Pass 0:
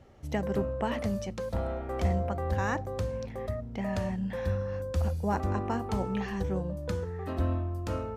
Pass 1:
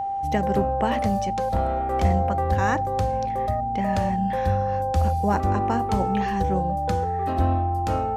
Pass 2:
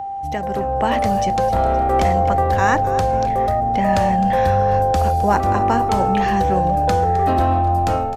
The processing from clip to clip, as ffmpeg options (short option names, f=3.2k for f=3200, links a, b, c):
-af "aeval=exprs='val(0)+0.0282*sin(2*PI*790*n/s)':c=same,volume=6.5dB"
-filter_complex "[0:a]acrossover=split=440|3700[a][b][c];[a]alimiter=limit=-23dB:level=0:latency=1:release=152[d];[d][b][c]amix=inputs=3:normalize=0,dynaudnorm=f=520:g=3:m=9dB,asplit=5[e][f][g][h][i];[f]adelay=260,afreqshift=-85,volume=-15dB[j];[g]adelay=520,afreqshift=-170,volume=-21.4dB[k];[h]adelay=780,afreqshift=-255,volume=-27.8dB[l];[i]adelay=1040,afreqshift=-340,volume=-34.1dB[m];[e][j][k][l][m]amix=inputs=5:normalize=0"